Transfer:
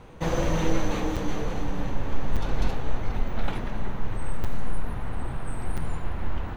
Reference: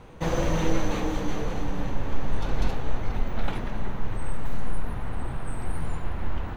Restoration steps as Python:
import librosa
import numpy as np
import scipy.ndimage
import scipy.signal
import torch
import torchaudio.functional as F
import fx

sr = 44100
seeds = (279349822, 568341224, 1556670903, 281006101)

y = fx.fix_interpolate(x, sr, at_s=(1.16, 2.36, 4.44, 5.77), length_ms=6.4)